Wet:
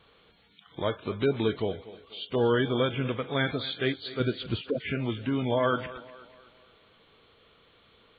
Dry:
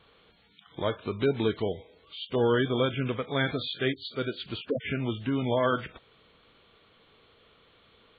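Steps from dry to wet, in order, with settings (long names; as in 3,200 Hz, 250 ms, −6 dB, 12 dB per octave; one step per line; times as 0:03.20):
0:04.20–0:04.62: low-shelf EQ 290 Hz +10 dB
on a send: feedback echo with a high-pass in the loop 243 ms, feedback 46%, high-pass 190 Hz, level −16 dB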